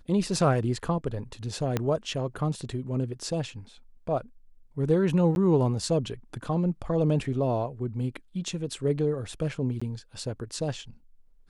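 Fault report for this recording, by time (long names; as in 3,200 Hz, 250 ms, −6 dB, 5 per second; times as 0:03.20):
0:01.77: click −12 dBFS
0:05.35–0:05.36: drop-out 11 ms
0:09.80–0:09.81: drop-out 15 ms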